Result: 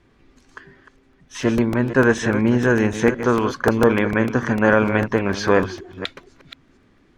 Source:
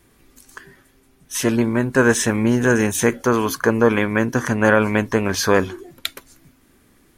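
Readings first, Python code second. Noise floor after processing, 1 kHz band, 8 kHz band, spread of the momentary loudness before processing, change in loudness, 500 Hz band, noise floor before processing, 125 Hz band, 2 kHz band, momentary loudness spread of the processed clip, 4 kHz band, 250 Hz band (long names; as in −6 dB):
−57 dBFS, 0.0 dB, −11.5 dB, 12 LU, −0.5 dB, 0.0 dB, −56 dBFS, 0.0 dB, −1.0 dB, 12 LU, −4.0 dB, 0.0 dB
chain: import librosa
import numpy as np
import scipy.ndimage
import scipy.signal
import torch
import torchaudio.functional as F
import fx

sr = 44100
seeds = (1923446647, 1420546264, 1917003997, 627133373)

y = fx.reverse_delay(x, sr, ms=242, wet_db=-10.5)
y = fx.air_absorb(y, sr, metres=160.0)
y = fx.buffer_crackle(y, sr, first_s=0.98, period_s=0.15, block=64, kind='repeat')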